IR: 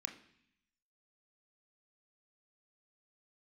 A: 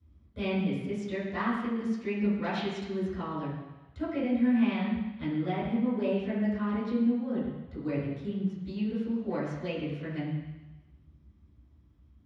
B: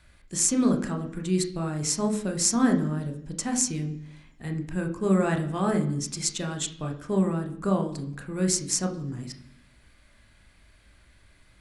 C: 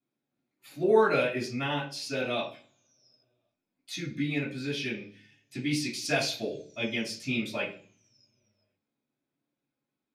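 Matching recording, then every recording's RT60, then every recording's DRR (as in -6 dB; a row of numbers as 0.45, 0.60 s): B; 1.0 s, 0.65 s, not exponential; -13.0, 4.0, -11.0 dB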